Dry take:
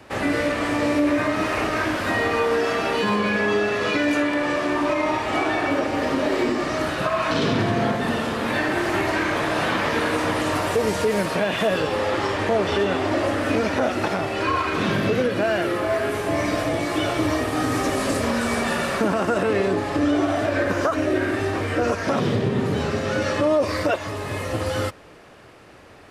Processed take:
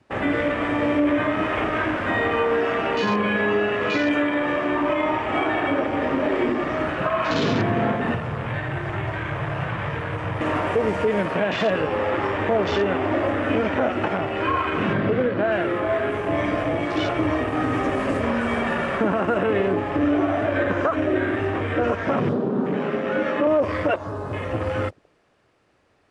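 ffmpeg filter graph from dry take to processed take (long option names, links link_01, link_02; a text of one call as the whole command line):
ffmpeg -i in.wav -filter_complex "[0:a]asettb=1/sr,asplit=3[link_01][link_02][link_03];[link_01]atrim=end=8.144[link_04];[link_02]atrim=start=8.14:end=10.41,asetpts=PTS-STARTPTS,afade=type=in:duration=0.004:curve=qsin,afade=type=out:start_time=2.266:duration=0.004:curve=qsin,acrossover=split=150|7800[link_05][link_06][link_07];[link_05]acompressor=threshold=-48dB:ratio=4[link_08];[link_06]acompressor=threshold=-26dB:ratio=4[link_09];[link_07]acompressor=threshold=-52dB:ratio=4[link_10];[link_08][link_09][link_10]amix=inputs=3:normalize=0,lowshelf=frequency=180:width_type=q:width=3:gain=10.5[link_11];[link_03]atrim=start=10.406[link_12];[link_04][link_11]acrossfade=duration=0.004:curve1=hsin:curve2=qsin[link_13];[link_13][link_12]acrossfade=duration=0.004:curve1=qsin:curve2=hsin,asettb=1/sr,asplit=3[link_14][link_15][link_16];[link_14]atrim=end=14.934[link_17];[link_15]atrim=start=14.93:end=15.52,asetpts=PTS-STARTPTS,afade=type=in:duration=0.004:curve=qsin,afade=type=out:start_time=0.586:duration=0.004:curve=qsin,lowpass=frequency=4900:width=0.5412,lowpass=frequency=4900:width=1.3066,equalizer=frequency=2600:width_type=o:width=0.33:gain=-7.5[link_18];[link_16]atrim=start=15.516[link_19];[link_17][link_18]acrossfade=duration=0.004:curve1=hsin:curve2=qsin[link_20];[link_20][link_19]acrossfade=duration=0.004:curve1=qsin:curve2=hsin,asettb=1/sr,asplit=3[link_21][link_22][link_23];[link_21]atrim=end=22.334[link_24];[link_22]atrim=start=22.33:end=23.47,asetpts=PTS-STARTPTS,afade=type=in:duration=0.004:curve=qsin,afade=type=out:start_time=1.136:duration=0.004:curve=qsin,highpass=frequency=190:width=0.5412,highpass=frequency=190:width=1.3066,bass=frequency=250:gain=3,treble=frequency=4000:gain=-6,asplit=2[link_25][link_26];[link_26]adelay=32,volume=-13.5dB[link_27];[link_25][link_27]amix=inputs=2:normalize=0,atrim=end_sample=50274[link_28];[link_23]atrim=start=23.466[link_29];[link_24][link_28]acrossfade=duration=0.004:curve1=hsin:curve2=qsin[link_30];[link_30][link_29]acrossfade=duration=0.004:curve1=qsin:curve2=hsin,lowpass=frequency=10000:width=0.5412,lowpass=frequency=10000:width=1.3066,afwtdn=0.0251" out.wav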